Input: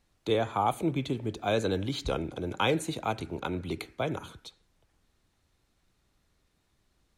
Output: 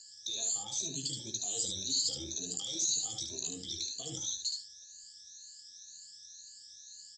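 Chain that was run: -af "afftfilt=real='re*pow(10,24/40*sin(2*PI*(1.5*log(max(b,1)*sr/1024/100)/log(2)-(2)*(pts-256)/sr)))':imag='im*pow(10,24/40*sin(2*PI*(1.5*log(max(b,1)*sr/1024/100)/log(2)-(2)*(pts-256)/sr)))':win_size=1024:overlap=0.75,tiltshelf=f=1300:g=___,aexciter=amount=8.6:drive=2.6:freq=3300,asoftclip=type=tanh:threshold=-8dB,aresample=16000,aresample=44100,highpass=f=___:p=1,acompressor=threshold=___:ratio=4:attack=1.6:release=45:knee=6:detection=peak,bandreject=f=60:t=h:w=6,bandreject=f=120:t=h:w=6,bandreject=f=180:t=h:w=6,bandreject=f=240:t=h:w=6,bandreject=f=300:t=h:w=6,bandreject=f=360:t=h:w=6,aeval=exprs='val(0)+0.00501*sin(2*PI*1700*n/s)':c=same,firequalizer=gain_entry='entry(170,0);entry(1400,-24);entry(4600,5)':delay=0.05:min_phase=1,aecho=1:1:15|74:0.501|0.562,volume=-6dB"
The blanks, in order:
-9, 74, -30dB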